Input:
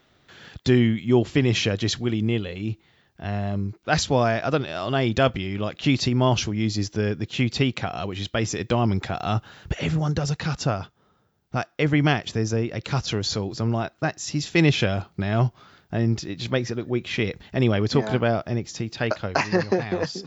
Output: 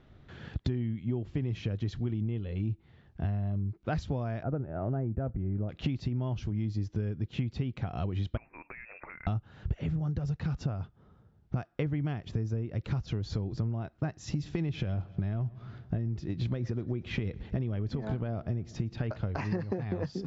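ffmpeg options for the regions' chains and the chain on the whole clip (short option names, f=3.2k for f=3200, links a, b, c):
-filter_complex "[0:a]asettb=1/sr,asplit=3[a][b][c];[a]atrim=end=4.434[d];[b]atrim=start=4.43:end=5.69,asetpts=PTS-STARTPTS,afade=t=in:d=0.004:c=qsin,afade=t=out:st=1.256:d=0.004:c=qsin,lowpass=f=1.4k:w=0.5412,lowpass=f=1.4k:w=1.3066,equalizer=f=1.1k:w=5.4:g=-12.5[e];[c]atrim=start=5.686[f];[d][e]acrossfade=d=0.004:c1=hsin:c2=qsin[g];[g][f]acrossfade=d=0.004:c1=qsin:c2=hsin,asettb=1/sr,asplit=3[h][i][j];[h]atrim=end=8.374[k];[i]atrim=start=8.37:end=9.27,asetpts=PTS-STARTPTS,afade=t=in:d=0.004:c=qsin,afade=t=out:st=0.896:d=0.004:c=qsin,highpass=550,acompressor=threshold=-36dB:ratio=12:attack=3.2:release=140:knee=1:detection=peak,lowpass=f=2.4k:t=q:w=0.5098,lowpass=f=2.4k:t=q:w=0.6013,lowpass=f=2.4k:t=q:w=0.9,lowpass=f=2.4k:t=q:w=2.563,afreqshift=-2800[l];[j]atrim=start=9.266[m];[k][l]acrossfade=d=0.004:c1=hsin:c2=qsin[n];[n][m]acrossfade=d=0.004:c1=qsin:c2=hsin,asettb=1/sr,asplit=3[o][p][q];[o]atrim=end=14.194[r];[p]atrim=start=14.19:end=19.43,asetpts=PTS-STARTPTS,afade=t=in:d=0.004:c=qsin,afade=t=out:st=5.236:d=0.004:c=qsin,acompressor=threshold=-21dB:ratio=4:attack=3.2:release=140:knee=1:detection=peak,aecho=1:1:116|232|348|464:0.0708|0.0389|0.0214|0.0118,atrim=end_sample=231084[s];[q]atrim=start=19.426[t];[r][s]acrossfade=d=0.004:c1=hsin:c2=qsin[u];[u][t]acrossfade=d=0.004:c1=qsin:c2=hsin,aemphasis=mode=reproduction:type=riaa,acompressor=threshold=-25dB:ratio=16,volume=-3dB"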